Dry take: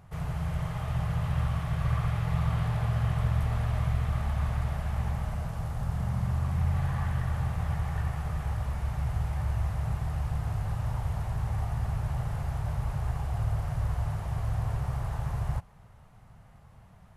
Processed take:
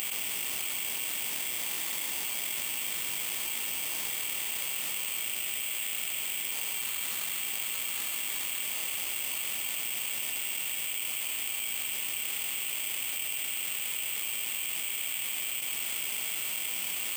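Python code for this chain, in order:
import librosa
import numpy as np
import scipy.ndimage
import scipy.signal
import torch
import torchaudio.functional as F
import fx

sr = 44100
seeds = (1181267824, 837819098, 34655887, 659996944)

y = fx.tracing_dist(x, sr, depth_ms=0.11)
y = fx.low_shelf(y, sr, hz=460.0, db=10.0)
y = fx.formant_shift(y, sr, semitones=3)
y = fx.freq_invert(y, sr, carrier_hz=3500)
y = scipy.signal.sosfilt(scipy.signal.butter(2, 140.0, 'highpass', fs=sr, output='sos'), y)
y = fx.peak_eq(y, sr, hz=1600.0, db=-10.5, octaves=1.6)
y = (np.kron(scipy.signal.resample_poly(y, 1, 8), np.eye(8)[0]) * 8)[:len(y)]
y = fx.env_flatten(y, sr, amount_pct=100)
y = y * 10.0 ** (2.5 / 20.0)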